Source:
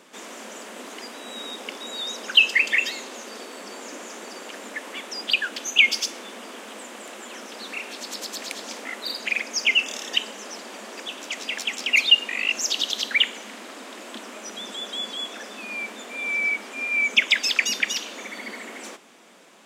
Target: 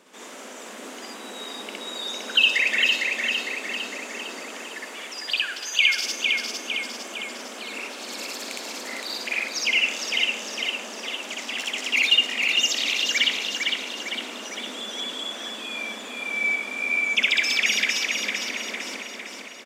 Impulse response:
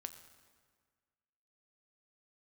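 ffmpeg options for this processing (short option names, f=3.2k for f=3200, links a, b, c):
-filter_complex "[0:a]asplit=3[a][b][c];[a]afade=t=out:st=4.58:d=0.02[d];[b]highpass=f=1.1k:p=1,afade=t=in:st=4.58:d=0.02,afade=t=out:st=5.97:d=0.02[e];[c]afade=t=in:st=5.97:d=0.02[f];[d][e][f]amix=inputs=3:normalize=0,aecho=1:1:455|910|1365|1820|2275|2730|3185:0.631|0.334|0.177|0.0939|0.0498|0.0264|0.014,asplit=2[g][h];[1:a]atrim=start_sample=2205,adelay=62[i];[h][i]afir=irnorm=-1:irlink=0,volume=4.5dB[j];[g][j]amix=inputs=2:normalize=0,volume=-4.5dB"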